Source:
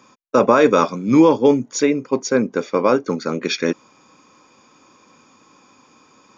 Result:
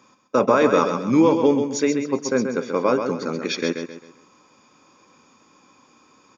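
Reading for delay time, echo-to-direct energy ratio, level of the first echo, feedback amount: 132 ms, -6.5 dB, -7.0 dB, 36%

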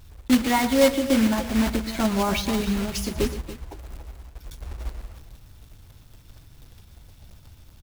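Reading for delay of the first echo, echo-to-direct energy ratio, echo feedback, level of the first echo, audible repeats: 119 ms, -9.5 dB, no regular repeats, -14.0 dB, 2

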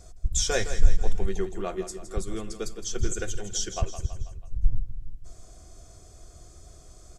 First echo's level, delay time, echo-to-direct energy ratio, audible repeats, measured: -11.0 dB, 163 ms, -9.5 dB, 4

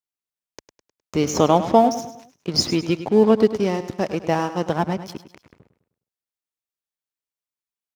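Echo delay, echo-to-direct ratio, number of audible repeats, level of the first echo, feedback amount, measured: 103 ms, -11.5 dB, 4, -12.5 dB, 43%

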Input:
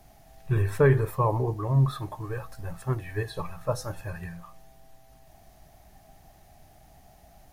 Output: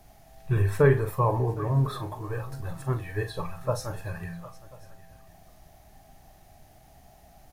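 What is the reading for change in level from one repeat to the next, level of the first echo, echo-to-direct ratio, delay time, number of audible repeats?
no regular repeats, -9.5 dB, -9.0 dB, 41 ms, 4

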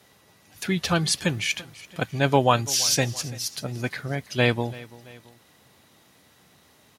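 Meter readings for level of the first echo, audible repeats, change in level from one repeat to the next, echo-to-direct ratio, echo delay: -20.0 dB, 2, -6.0 dB, -19.0 dB, 336 ms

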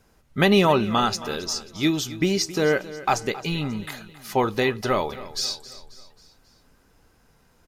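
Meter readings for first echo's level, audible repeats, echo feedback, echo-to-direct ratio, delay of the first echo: -16.5 dB, 3, 49%, -15.5 dB, 269 ms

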